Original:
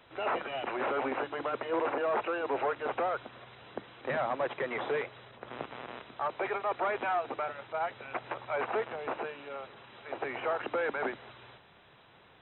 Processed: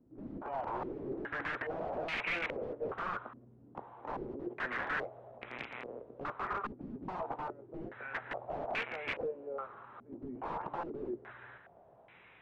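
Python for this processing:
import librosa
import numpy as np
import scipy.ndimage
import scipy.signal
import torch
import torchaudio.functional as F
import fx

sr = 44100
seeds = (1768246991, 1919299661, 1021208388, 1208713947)

y = fx.doubler(x, sr, ms=17.0, db=-10)
y = (np.mod(10.0 ** (29.0 / 20.0) * y + 1.0, 2.0) - 1.0) / 10.0 ** (29.0 / 20.0)
y = fx.filter_held_lowpass(y, sr, hz=2.4, low_hz=270.0, high_hz=2300.0)
y = y * librosa.db_to_amplitude(-5.0)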